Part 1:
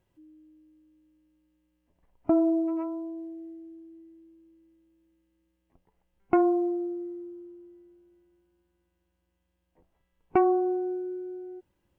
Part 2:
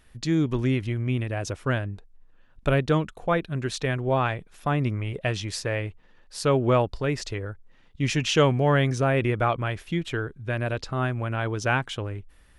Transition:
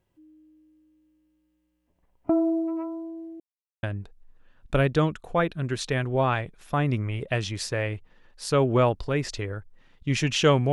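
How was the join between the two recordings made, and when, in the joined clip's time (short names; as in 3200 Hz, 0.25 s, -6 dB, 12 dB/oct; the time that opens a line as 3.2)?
part 1
3.4–3.83 mute
3.83 switch to part 2 from 1.76 s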